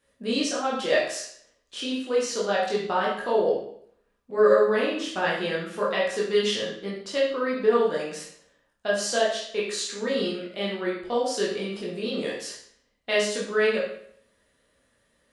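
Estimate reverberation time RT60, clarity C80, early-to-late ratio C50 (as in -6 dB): 0.65 s, 7.0 dB, 3.5 dB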